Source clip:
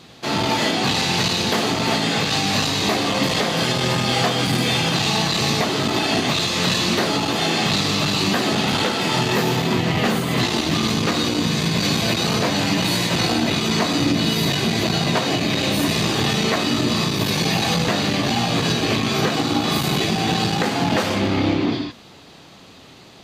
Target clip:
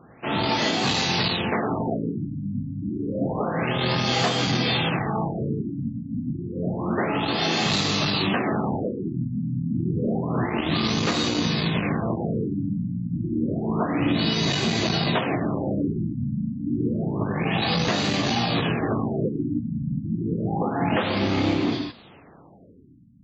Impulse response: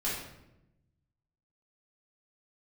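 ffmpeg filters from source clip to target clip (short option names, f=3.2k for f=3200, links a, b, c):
-af "afftfilt=real='re*lt(b*sr/1024,260*pow(7800/260,0.5+0.5*sin(2*PI*0.29*pts/sr)))':imag='im*lt(b*sr/1024,260*pow(7800/260,0.5+0.5*sin(2*PI*0.29*pts/sr)))':win_size=1024:overlap=0.75,volume=-3dB"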